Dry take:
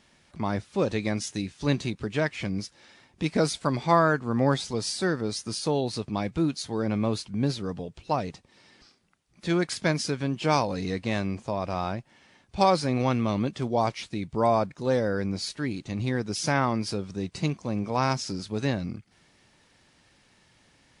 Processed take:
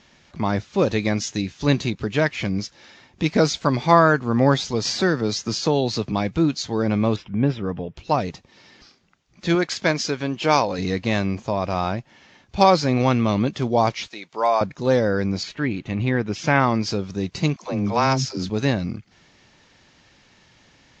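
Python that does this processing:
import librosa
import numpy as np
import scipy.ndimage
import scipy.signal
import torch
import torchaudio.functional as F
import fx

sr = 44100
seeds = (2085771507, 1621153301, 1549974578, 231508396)

y = fx.band_squash(x, sr, depth_pct=40, at=(4.85, 6.12))
y = fx.savgol(y, sr, points=25, at=(7.16, 7.97))
y = fx.bass_treble(y, sr, bass_db=-7, treble_db=-1, at=(9.55, 10.79))
y = fx.highpass(y, sr, hz=650.0, slope=12, at=(14.08, 14.61))
y = fx.high_shelf_res(y, sr, hz=3600.0, db=-8.5, q=1.5, at=(15.43, 16.6))
y = fx.dispersion(y, sr, late='lows', ms=93.0, hz=310.0, at=(17.56, 18.5))
y = scipy.signal.sosfilt(scipy.signal.ellip(4, 1.0, 40, 6900.0, 'lowpass', fs=sr, output='sos'), y)
y = y * 10.0 ** (7.0 / 20.0)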